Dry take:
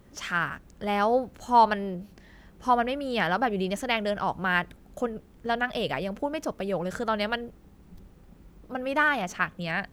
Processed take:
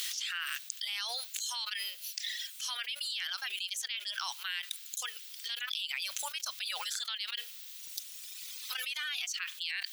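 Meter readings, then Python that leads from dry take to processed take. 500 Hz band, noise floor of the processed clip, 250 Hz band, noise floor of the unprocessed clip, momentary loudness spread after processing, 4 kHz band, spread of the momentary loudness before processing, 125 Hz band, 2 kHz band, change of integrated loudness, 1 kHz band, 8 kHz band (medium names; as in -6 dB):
-31.5 dB, -48 dBFS, under -40 dB, -54 dBFS, 7 LU, +4.5 dB, 10 LU, under -40 dB, -9.5 dB, -8.5 dB, -21.0 dB, +9.5 dB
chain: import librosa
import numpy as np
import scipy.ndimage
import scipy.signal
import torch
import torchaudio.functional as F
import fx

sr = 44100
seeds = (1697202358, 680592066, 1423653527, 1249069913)

y = fx.dereverb_blind(x, sr, rt60_s=1.6)
y = fx.rider(y, sr, range_db=3, speed_s=2.0)
y = fx.ladder_highpass(y, sr, hz=2900.0, resonance_pct=35)
y = fx.env_flatten(y, sr, amount_pct=100)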